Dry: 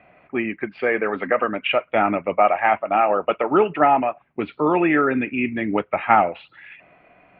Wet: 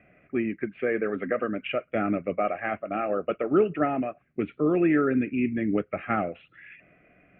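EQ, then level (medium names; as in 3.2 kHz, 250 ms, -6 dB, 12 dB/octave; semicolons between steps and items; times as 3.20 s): dynamic bell 2.1 kHz, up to -6 dB, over -36 dBFS, Q 1.4; distance through air 420 m; static phaser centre 2.2 kHz, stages 4; 0.0 dB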